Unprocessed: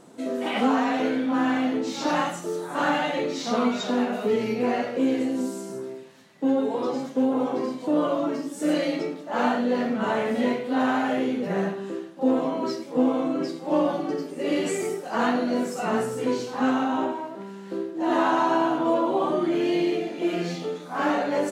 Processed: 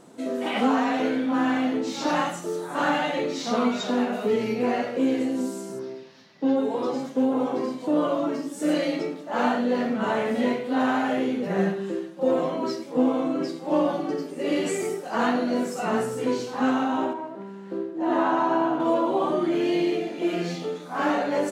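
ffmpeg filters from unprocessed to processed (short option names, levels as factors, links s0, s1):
-filter_complex "[0:a]asettb=1/sr,asplit=3[s0][s1][s2];[s0]atrim=end=5.794[s3];[s1]atrim=start=5.79:end=6.56,asetpts=PTS-STARTPTS,afade=t=in:d=0.004:c=qsin,afade=t=out:st=0.766:d=0.004:c=qsin,highshelf=f=6600:t=q:w=3:g=-8.5[s4];[s2]atrim=start=6.556[s5];[s3][s4]acrossfade=d=0.004:c1=hsin:c2=qsin[s6];[s6][s5]acrossfade=d=0.004:c1=qsin:c2=hsin,asettb=1/sr,asplit=3[s7][s8][s9];[s7]atrim=end=11.584[s10];[s8]atrim=start=11.58:end=12.56,asetpts=PTS-STARTPTS,afade=t=in:d=0.004:c=qsin,afade=t=out:st=0.976:d=0.004:c=qsin,aecho=1:1:5.6:0.65,atrim=end_sample=43218[s11];[s9]atrim=start=12.556[s12];[s10][s11]acrossfade=d=0.004:c1=hsin:c2=qsin[s13];[s13][s12]acrossfade=d=0.004:c1=qsin:c2=hsin,asettb=1/sr,asplit=3[s14][s15][s16];[s14]atrim=end=17.134[s17];[s15]atrim=start=17.13:end=18.8,asetpts=PTS-STARTPTS,afade=t=in:d=0.004:c=qsin,afade=t=out:st=1.666:d=0.004:c=qsin,highshelf=f=2900:g=-11[s18];[s16]atrim=start=18.796[s19];[s17][s18]acrossfade=d=0.004:c1=hsin:c2=qsin[s20];[s20][s19]acrossfade=d=0.004:c1=qsin:c2=hsin"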